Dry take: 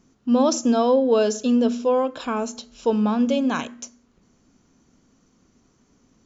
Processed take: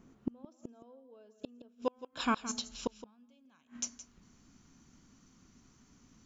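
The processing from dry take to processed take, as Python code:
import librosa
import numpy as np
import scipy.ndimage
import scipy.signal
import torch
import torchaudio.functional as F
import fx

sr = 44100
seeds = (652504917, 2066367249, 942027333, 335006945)

y = fx.peak_eq(x, sr, hz=fx.steps((0.0, 5500.0), (1.82, 500.0)), db=-10.0, octaves=1.3)
y = fx.gate_flip(y, sr, shuts_db=-20.0, range_db=-39)
y = y + 10.0 ** (-14.0 / 20.0) * np.pad(y, (int(168 * sr / 1000.0), 0))[:len(y)]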